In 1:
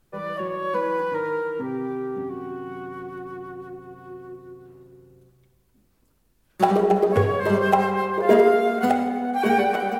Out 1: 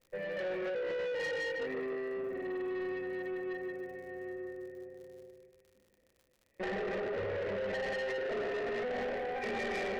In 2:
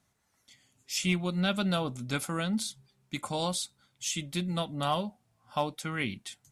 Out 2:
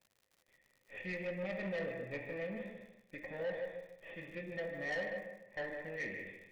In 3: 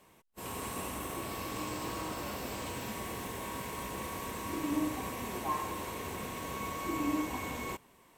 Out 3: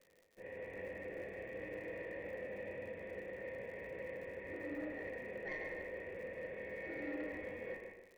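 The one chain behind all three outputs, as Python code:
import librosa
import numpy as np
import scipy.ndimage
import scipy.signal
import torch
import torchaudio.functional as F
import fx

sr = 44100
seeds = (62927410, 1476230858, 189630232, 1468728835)

p1 = fx.lower_of_two(x, sr, delay_ms=0.33)
p2 = fx.formant_cascade(p1, sr, vowel='e')
p3 = fx.peak_eq(p2, sr, hz=1900.0, db=7.5, octaves=0.22)
p4 = fx.rev_gated(p3, sr, seeds[0], gate_ms=340, shape='falling', drr_db=2.0)
p5 = fx.dmg_crackle(p4, sr, seeds[1], per_s=69.0, level_db=-57.0)
p6 = fx.dynamic_eq(p5, sr, hz=2400.0, q=3.8, threshold_db=-56.0, ratio=4.0, max_db=3)
p7 = fx.echo_feedback(p6, sr, ms=152, feedback_pct=26, wet_db=-7)
p8 = fx.over_compress(p7, sr, threshold_db=-34.0, ratio=-0.5)
p9 = p7 + F.gain(torch.from_numpy(p8), 2.5).numpy()
p10 = 10.0 ** (-28.5 / 20.0) * np.tanh(p9 / 10.0 ** (-28.5 / 20.0))
y = F.gain(torch.from_numpy(p10), -4.0).numpy()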